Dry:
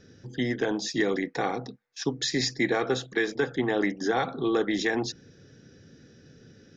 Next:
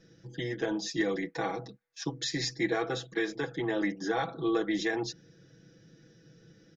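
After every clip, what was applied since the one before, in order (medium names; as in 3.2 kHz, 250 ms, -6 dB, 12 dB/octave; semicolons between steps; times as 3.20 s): comb 6.1 ms, depth 97%; trim -7.5 dB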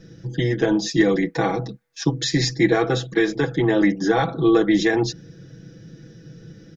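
bass shelf 270 Hz +9.5 dB; trim +9 dB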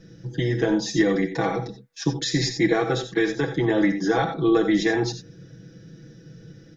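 gated-style reverb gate 110 ms rising, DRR 8 dB; trim -3 dB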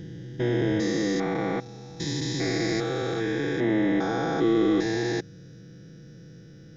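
spectrogram pixelated in time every 400 ms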